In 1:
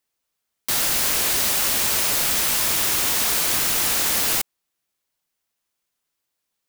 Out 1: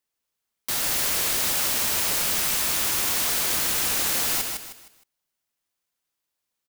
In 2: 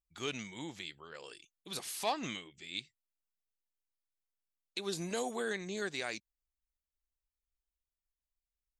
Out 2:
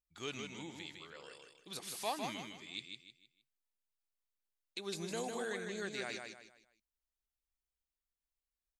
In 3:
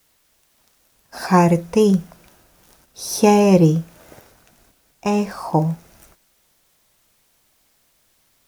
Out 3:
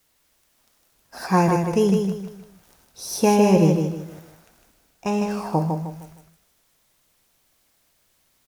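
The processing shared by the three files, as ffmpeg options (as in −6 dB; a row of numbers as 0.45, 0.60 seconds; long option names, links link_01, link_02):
-af "aecho=1:1:155|310|465|620:0.562|0.191|0.065|0.0221,volume=-4.5dB"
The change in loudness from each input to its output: −3.5, −3.5, −4.0 LU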